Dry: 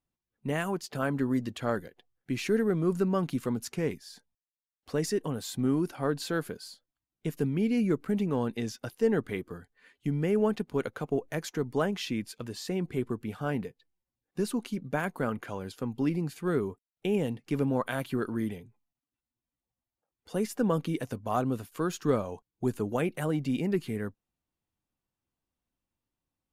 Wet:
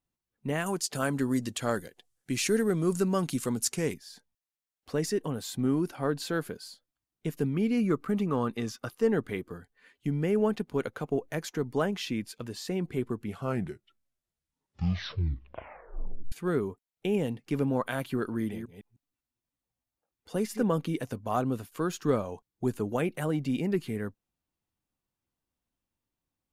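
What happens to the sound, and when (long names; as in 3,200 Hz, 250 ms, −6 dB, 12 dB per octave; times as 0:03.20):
0:00.66–0:03.94: parametric band 8,300 Hz +14 dB 1.7 octaves
0:07.54–0:09.10: parametric band 1,200 Hz +13 dB 0.26 octaves
0:13.17: tape stop 3.15 s
0:18.35–0:20.63: delay that plays each chunk backwards 154 ms, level −8.5 dB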